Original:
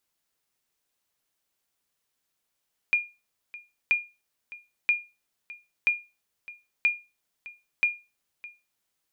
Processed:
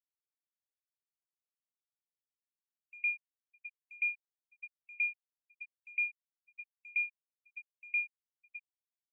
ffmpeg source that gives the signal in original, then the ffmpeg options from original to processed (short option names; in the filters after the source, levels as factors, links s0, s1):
-f lavfi -i "aevalsrc='0.188*(sin(2*PI*2420*mod(t,0.98))*exp(-6.91*mod(t,0.98)/0.27)+0.106*sin(2*PI*2420*max(mod(t,0.98)-0.61,0))*exp(-6.91*max(mod(t,0.98)-0.61,0)/0.27))':d=5.88:s=44100"
-filter_complex "[0:a]afftfilt=real='re*gte(hypot(re,im),0.0708)':imag='im*gte(hypot(re,im),0.0708)':win_size=1024:overlap=0.75,areverse,acompressor=threshold=0.0355:ratio=10,areverse,acrossover=split=4300[s0][s1];[s0]adelay=110[s2];[s2][s1]amix=inputs=2:normalize=0"